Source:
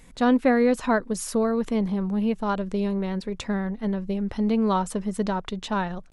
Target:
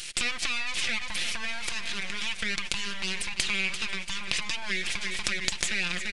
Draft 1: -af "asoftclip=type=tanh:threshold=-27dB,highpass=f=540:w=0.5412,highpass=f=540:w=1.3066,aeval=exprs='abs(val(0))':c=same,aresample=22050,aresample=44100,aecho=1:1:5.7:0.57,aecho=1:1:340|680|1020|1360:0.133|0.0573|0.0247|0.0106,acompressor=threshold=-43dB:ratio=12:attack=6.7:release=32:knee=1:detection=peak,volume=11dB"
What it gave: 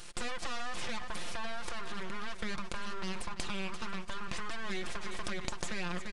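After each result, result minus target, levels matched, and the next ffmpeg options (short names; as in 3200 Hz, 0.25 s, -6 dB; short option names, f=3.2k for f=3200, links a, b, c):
soft clip: distortion +11 dB; 4000 Hz band -3.0 dB
-af "asoftclip=type=tanh:threshold=-15.5dB,highpass=f=540:w=0.5412,highpass=f=540:w=1.3066,aeval=exprs='abs(val(0))':c=same,aresample=22050,aresample=44100,aecho=1:1:5.7:0.57,aecho=1:1:340|680|1020|1360:0.133|0.0573|0.0247|0.0106,acompressor=threshold=-43dB:ratio=12:attack=6.7:release=32:knee=1:detection=peak,volume=11dB"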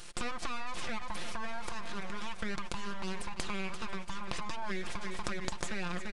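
4000 Hz band -4.0 dB
-af "asoftclip=type=tanh:threshold=-15.5dB,highpass=f=540:w=0.5412,highpass=f=540:w=1.3066,aeval=exprs='abs(val(0))':c=same,aresample=22050,aresample=44100,aecho=1:1:5.7:0.57,aecho=1:1:340|680|1020|1360:0.133|0.0573|0.0247|0.0106,acompressor=threshold=-43dB:ratio=12:attack=6.7:release=32:knee=1:detection=peak,highshelf=f=1.6k:t=q:w=1.5:g=12.5,volume=11dB"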